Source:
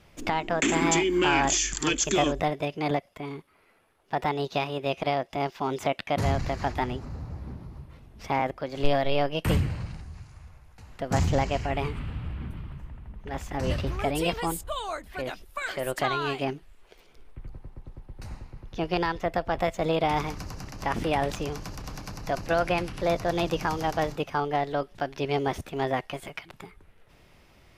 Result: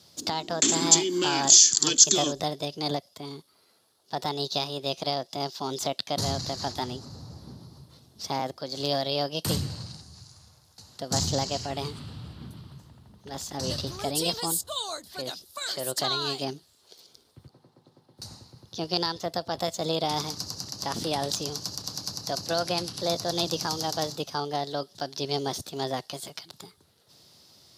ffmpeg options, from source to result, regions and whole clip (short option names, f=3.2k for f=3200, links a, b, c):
-filter_complex "[0:a]asettb=1/sr,asplit=3[a][b][c];[a]atrim=end=17.474[d];[b]atrim=start=17.47:end=18.18,asetpts=PTS-STARTPTS,afade=t=in:d=0.004:c=qsin,afade=t=out:st=0.706:d=0.004:c=qsin,highpass=f=130:w=0.5412,highpass=f=130:w=1.3066,bass=f=250:g=-5,treble=f=4k:g=-9,bandreject=f=50:t=h:w=6,bandreject=f=100:t=h:w=6,bandreject=f=150:t=h:w=6,bandreject=f=200:t=h:w=6,bandreject=f=250:t=h:w=6,bandreject=f=300:t=h:w=6,bandreject=f=350:t=h:w=6,bandreject=f=400:t=h:w=6,bandreject=f=450:t=h:w=6,bandreject=f=500:t=h:w=6[e];[c]atrim=start=18.176[f];[d][e]acrossfade=d=0.004:c1=hsin:c2=qsin[g];[g][f]acrossfade=d=0.004:c1=qsin:c2=hsin,highpass=f=94:w=0.5412,highpass=f=94:w=1.3066,highshelf=f=3.2k:t=q:w=3:g=11,volume=-3dB"